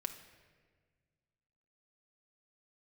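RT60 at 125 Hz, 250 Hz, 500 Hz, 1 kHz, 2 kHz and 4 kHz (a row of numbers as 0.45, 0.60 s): 2.4, 2.1, 1.8, 1.4, 1.5, 1.1 s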